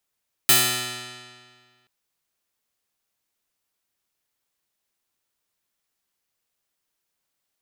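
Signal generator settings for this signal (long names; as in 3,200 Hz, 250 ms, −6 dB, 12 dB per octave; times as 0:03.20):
Karplus-Strong string B2, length 1.38 s, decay 1.84 s, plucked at 0.23, bright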